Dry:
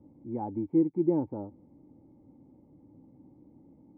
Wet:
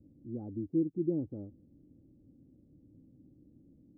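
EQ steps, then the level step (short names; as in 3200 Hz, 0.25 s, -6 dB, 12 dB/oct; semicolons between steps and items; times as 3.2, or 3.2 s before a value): running mean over 48 samples; low shelf 100 Hz +8.5 dB; -4.5 dB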